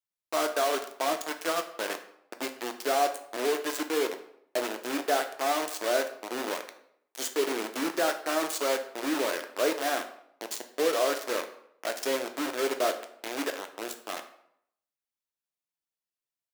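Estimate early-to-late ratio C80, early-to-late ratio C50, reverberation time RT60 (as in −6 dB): 14.0 dB, 11.5 dB, 0.70 s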